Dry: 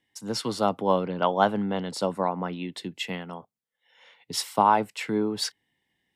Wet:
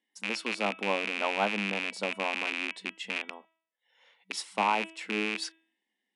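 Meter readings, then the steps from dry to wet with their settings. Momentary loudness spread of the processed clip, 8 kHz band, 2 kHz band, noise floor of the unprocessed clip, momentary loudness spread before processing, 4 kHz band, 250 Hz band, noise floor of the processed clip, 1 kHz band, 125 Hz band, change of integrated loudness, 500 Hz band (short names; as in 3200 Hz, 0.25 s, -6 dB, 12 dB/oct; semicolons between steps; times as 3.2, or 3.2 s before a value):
8 LU, -6.5 dB, +6.0 dB, -83 dBFS, 12 LU, -2.0 dB, -8.5 dB, -85 dBFS, -7.5 dB, under -10 dB, -4.5 dB, -8.0 dB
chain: rattling part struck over -38 dBFS, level -11 dBFS; de-hum 325.1 Hz, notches 11; FFT band-pass 190–11000 Hz; gain -7.5 dB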